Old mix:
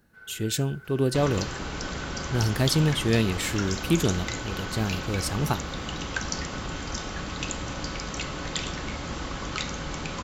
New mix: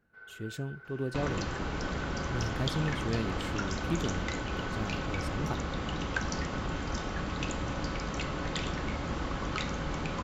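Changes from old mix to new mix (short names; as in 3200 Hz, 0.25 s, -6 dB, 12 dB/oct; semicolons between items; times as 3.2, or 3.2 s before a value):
speech -10.0 dB; master: add high shelf 3600 Hz -12 dB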